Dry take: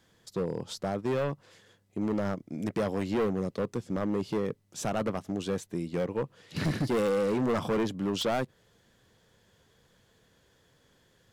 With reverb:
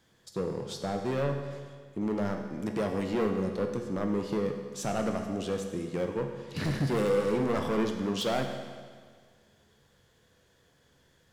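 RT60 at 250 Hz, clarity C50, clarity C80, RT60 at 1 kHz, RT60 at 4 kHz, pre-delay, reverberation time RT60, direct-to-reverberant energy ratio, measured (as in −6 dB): 1.7 s, 5.5 dB, 7.0 dB, 1.7 s, 1.6 s, 14 ms, 1.7 s, 3.5 dB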